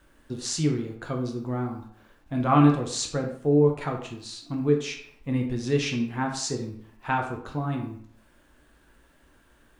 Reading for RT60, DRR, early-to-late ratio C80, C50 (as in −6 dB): 0.65 s, 2.0 dB, 10.0 dB, 7.0 dB